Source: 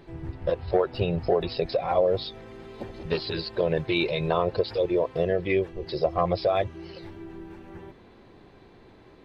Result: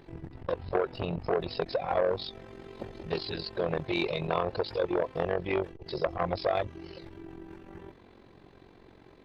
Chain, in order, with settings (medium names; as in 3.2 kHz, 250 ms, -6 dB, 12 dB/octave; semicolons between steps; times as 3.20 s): AM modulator 45 Hz, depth 55%; transformer saturation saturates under 900 Hz